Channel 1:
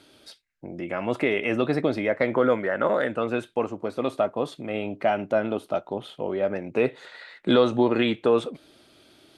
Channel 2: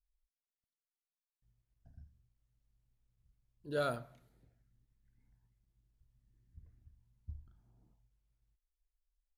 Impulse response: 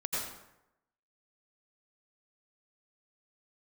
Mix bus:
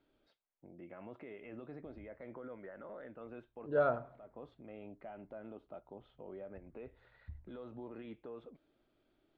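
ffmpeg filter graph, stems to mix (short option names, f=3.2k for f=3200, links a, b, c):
-filter_complex "[0:a]acompressor=threshold=-22dB:ratio=6,alimiter=limit=-20dB:level=0:latency=1:release=18,volume=-18.5dB[a];[1:a]lowpass=3.1k,equalizer=f=810:t=o:w=2.4:g=10.5,volume=-3dB,asplit=2[b][c];[c]apad=whole_len=413478[d];[a][d]sidechaincompress=threshold=-56dB:ratio=5:attack=16:release=230[e];[e][b]amix=inputs=2:normalize=0,lowpass=3.1k,highshelf=f=2.2k:g=-9"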